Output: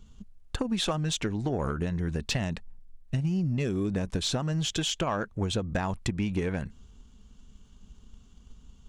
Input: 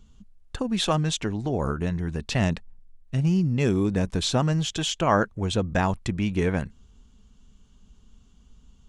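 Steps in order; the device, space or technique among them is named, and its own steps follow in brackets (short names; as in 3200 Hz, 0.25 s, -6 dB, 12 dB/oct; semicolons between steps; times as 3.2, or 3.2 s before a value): drum-bus smash (transient shaper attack +6 dB, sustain +2 dB; compressor 12:1, threshold -23 dBFS, peak gain reduction 11 dB; soft clip -18 dBFS, distortion -19 dB)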